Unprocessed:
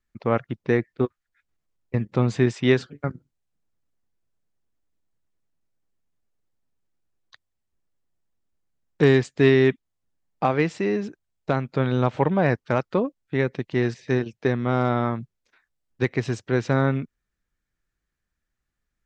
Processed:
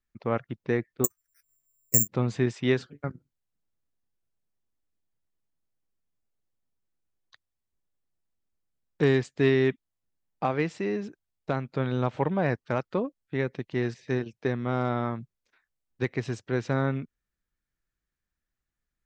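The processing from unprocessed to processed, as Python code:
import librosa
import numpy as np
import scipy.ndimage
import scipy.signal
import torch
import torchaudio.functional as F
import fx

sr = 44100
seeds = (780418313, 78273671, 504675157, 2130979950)

y = fx.resample_bad(x, sr, factor=6, down='filtered', up='zero_stuff', at=(1.04, 2.08))
y = y * 10.0 ** (-5.5 / 20.0)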